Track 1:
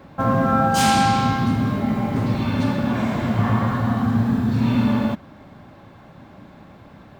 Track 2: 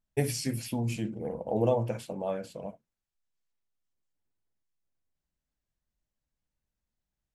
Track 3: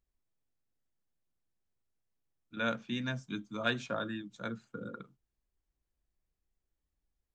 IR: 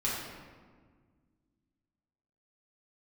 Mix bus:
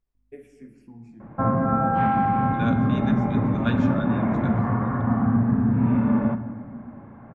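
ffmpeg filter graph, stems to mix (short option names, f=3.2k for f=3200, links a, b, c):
-filter_complex "[0:a]lowpass=f=2k:w=0.5412,lowpass=f=2k:w=1.3066,alimiter=limit=-11dB:level=0:latency=1:release=494,adelay=1200,volume=-2dB,asplit=2[a][b];[b]volume=-15.5dB[c];[1:a]lowpass=f=2.7k:p=1,aeval=exprs='val(0)+0.00224*(sin(2*PI*50*n/s)+sin(2*PI*2*50*n/s)/2+sin(2*PI*3*50*n/s)/3+sin(2*PI*4*50*n/s)/4+sin(2*PI*5*50*n/s)/5)':c=same,asplit=2[d][e];[e]afreqshift=-0.39[f];[d][f]amix=inputs=2:normalize=1,adelay=150,volume=-14dB,asplit=2[g][h];[h]volume=-11.5dB[i];[2:a]volume=1.5dB,asplit=2[j][k];[k]volume=-13.5dB[l];[3:a]atrim=start_sample=2205[m];[c][i][l]amix=inputs=3:normalize=0[n];[n][m]afir=irnorm=-1:irlink=0[o];[a][g][j][o]amix=inputs=4:normalize=0,highshelf=f=3k:g=-11"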